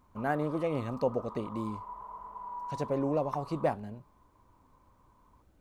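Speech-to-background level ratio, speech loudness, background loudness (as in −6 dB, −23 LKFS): 11.0 dB, −33.5 LKFS, −44.5 LKFS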